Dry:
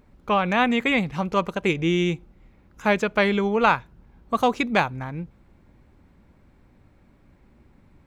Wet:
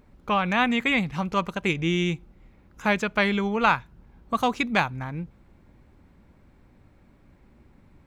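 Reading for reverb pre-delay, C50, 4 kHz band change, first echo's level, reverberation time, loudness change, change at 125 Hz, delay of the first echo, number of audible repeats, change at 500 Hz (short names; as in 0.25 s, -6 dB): none, none, 0.0 dB, none, none, -2.0 dB, -1.0 dB, none, none, -5.0 dB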